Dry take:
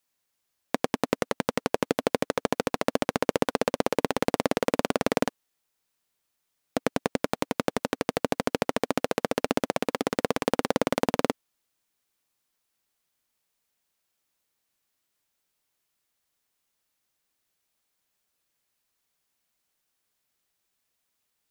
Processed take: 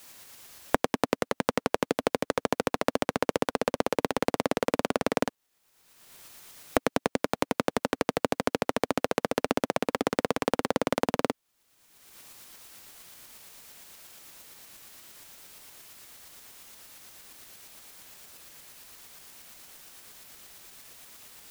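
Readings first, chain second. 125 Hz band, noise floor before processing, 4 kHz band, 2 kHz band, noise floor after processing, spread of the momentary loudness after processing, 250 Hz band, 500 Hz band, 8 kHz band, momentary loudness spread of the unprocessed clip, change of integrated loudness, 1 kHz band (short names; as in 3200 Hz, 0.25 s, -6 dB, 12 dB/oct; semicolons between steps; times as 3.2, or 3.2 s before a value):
-2.0 dB, -79 dBFS, -1.0 dB, -0.5 dB, -80 dBFS, 18 LU, -1.5 dB, -1.0 dB, -0.5 dB, 4 LU, -1.0 dB, 0.0 dB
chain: tremolo saw up 8.6 Hz, depth 30%; three-band squash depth 100%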